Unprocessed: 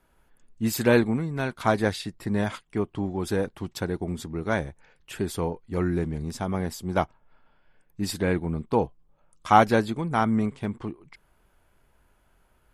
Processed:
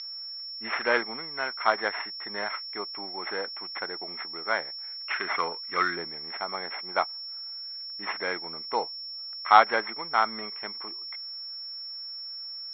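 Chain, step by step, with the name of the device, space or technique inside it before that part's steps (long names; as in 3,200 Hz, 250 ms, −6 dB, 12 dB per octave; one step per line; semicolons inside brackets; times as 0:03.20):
0:05.00–0:05.96: gain on a spectral selection 1,000–7,000 Hz +10 dB
0:05.24–0:06.07: low-shelf EQ 330 Hz +5.5 dB
toy sound module (linearly interpolated sample-rate reduction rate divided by 8×; switching amplifier with a slow clock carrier 5,400 Hz; loudspeaker in its box 790–3,800 Hz, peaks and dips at 1,300 Hz +5 dB, 2,100 Hz +10 dB, 3,600 Hz +6 dB)
level +2 dB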